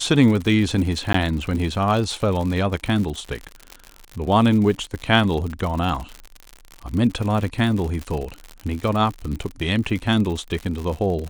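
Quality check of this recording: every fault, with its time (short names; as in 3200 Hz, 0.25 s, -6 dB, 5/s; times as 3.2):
crackle 90/s -26 dBFS
1.13–1.14 gap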